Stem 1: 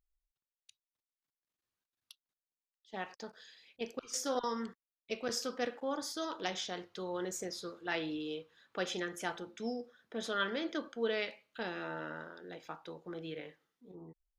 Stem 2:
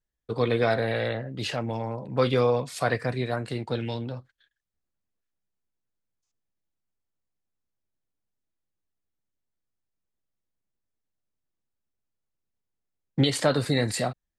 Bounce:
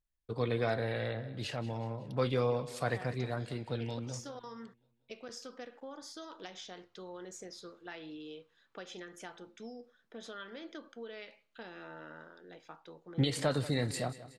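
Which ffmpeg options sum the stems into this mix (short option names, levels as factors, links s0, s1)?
-filter_complex "[0:a]acompressor=threshold=0.0141:ratio=6,lowpass=9600,volume=0.562[s0];[1:a]lowshelf=f=85:g=9,volume=0.355,asplit=2[s1][s2];[s2]volume=0.15,aecho=0:1:185|370|555|740|925|1110|1295:1|0.5|0.25|0.125|0.0625|0.0312|0.0156[s3];[s0][s1][s3]amix=inputs=3:normalize=0"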